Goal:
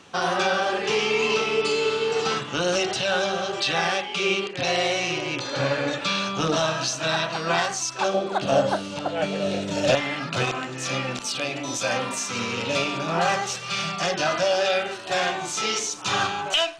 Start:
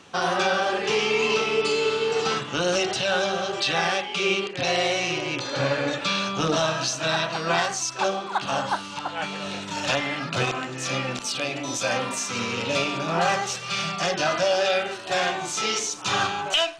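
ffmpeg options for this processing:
-filter_complex "[0:a]asettb=1/sr,asplit=3[a][b][c];[a]atrim=end=8.144[d];[b]atrim=start=8.14:end=9.95,asetpts=PTS-STARTPTS,afade=t=in:d=0.004:c=qsin,afade=t=out:st=1.806:d=0.004:c=qsin,lowshelf=f=750:t=q:w=3:g=6.5[e];[c]atrim=start=9.946[f];[d][e]acrossfade=d=0.004:c1=hsin:c2=qsin[g];[g][f]acrossfade=d=0.004:c1=qsin:c2=hsin"

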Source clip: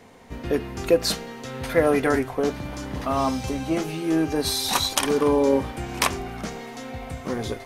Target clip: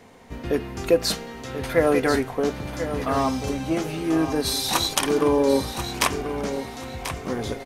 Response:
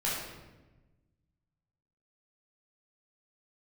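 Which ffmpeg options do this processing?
-af "aecho=1:1:1037|2074|3111:0.316|0.0727|0.0167"

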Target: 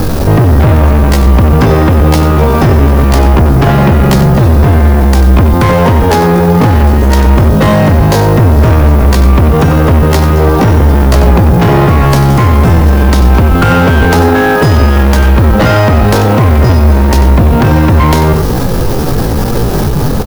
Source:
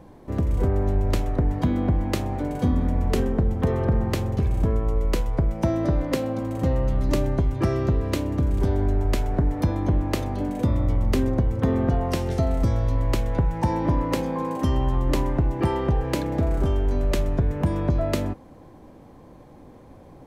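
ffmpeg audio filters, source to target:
-filter_complex "[0:a]aemphasis=mode=reproduction:type=bsi,asetrate=70004,aresample=44100,atempo=0.629961,acrossover=split=800[a][b];[a]asoftclip=type=tanh:threshold=-23.5dB[c];[b]acrusher=bits=8:mix=0:aa=0.000001[d];[c][d]amix=inputs=2:normalize=0,aexciter=amount=1.2:drive=8:freq=4.4k,asoftclip=type=hard:threshold=-23dB,asplit=2[e][f];[f]aecho=0:1:93:0.282[g];[e][g]amix=inputs=2:normalize=0,alimiter=level_in=32.5dB:limit=-1dB:release=50:level=0:latency=1,volume=-1dB"

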